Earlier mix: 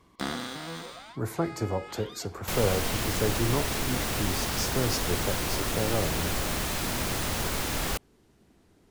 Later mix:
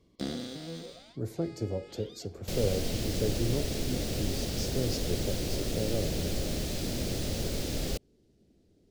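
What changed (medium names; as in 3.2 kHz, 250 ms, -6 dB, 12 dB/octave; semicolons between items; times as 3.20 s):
speech -3.0 dB; master: add FFT filter 560 Hz 0 dB, 1 kHz -19 dB, 4.7 kHz -2 dB, 10 kHz -9 dB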